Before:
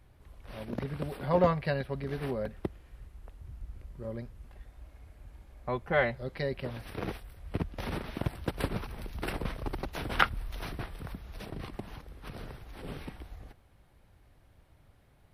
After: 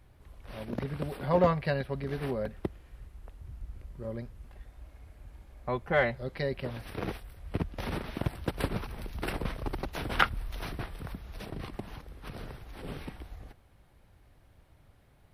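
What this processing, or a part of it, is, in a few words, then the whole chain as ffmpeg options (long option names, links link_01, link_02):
parallel distortion: -filter_complex "[0:a]asplit=2[link_01][link_02];[link_02]asoftclip=type=hard:threshold=-20dB,volume=-12dB[link_03];[link_01][link_03]amix=inputs=2:normalize=0,volume=-1dB"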